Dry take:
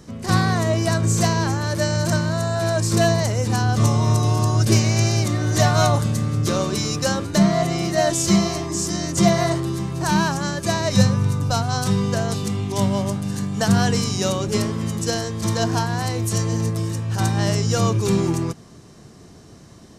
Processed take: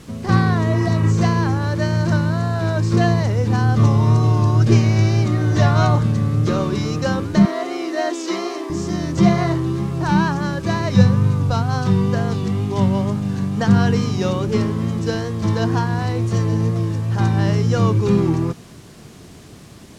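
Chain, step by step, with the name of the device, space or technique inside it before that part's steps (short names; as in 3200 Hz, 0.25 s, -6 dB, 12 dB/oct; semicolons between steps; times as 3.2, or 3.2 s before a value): cassette deck with a dirty head (tape spacing loss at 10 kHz 22 dB; wow and flutter; white noise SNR 29 dB); 0.74–1.08 spectral repair 790–3200 Hz before; 7.45–8.7 Chebyshev high-pass 270 Hz, order 5; LPF 8000 Hz 12 dB/oct; dynamic EQ 650 Hz, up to -6 dB, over -38 dBFS, Q 3.6; gain +4 dB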